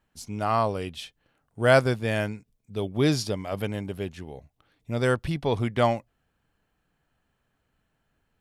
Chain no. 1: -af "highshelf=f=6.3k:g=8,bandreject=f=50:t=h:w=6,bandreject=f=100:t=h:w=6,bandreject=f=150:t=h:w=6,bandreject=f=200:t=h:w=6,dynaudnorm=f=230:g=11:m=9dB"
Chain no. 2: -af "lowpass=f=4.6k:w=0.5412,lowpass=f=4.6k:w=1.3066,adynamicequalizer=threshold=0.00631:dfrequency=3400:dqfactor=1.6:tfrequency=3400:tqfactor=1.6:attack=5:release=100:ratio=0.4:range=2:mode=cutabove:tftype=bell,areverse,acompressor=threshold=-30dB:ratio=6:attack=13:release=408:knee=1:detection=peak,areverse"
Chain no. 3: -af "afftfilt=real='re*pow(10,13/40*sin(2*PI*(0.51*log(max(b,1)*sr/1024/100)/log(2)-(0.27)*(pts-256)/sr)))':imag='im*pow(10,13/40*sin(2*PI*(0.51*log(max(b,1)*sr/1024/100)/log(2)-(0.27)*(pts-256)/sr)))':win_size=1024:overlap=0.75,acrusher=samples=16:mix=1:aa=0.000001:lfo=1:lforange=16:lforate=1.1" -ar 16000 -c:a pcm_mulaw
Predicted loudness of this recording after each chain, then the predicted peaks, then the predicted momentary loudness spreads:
-20.5, -36.0, -25.5 LUFS; -2.0, -19.5, -6.5 dBFS; 18, 10, 15 LU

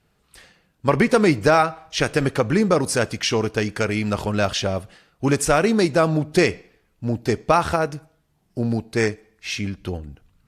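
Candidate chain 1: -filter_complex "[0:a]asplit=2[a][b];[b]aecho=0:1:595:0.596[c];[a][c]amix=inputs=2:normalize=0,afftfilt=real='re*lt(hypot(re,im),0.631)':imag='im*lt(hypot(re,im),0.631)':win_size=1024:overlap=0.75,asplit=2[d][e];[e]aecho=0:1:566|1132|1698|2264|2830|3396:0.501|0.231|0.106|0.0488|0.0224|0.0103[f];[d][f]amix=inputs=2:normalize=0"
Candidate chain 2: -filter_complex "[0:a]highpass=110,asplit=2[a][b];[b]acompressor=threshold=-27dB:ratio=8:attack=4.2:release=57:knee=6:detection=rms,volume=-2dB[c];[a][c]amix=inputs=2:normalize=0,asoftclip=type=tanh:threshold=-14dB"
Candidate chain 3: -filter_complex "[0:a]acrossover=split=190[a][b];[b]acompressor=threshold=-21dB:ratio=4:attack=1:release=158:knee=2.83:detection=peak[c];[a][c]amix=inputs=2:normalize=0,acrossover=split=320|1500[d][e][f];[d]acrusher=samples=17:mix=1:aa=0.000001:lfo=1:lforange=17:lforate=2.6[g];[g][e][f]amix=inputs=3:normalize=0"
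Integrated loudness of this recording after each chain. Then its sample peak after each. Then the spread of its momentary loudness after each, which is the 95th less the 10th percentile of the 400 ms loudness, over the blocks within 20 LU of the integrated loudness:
-23.0, -23.0, -26.0 LUFS; -6.0, -14.0, -10.5 dBFS; 5, 11, 9 LU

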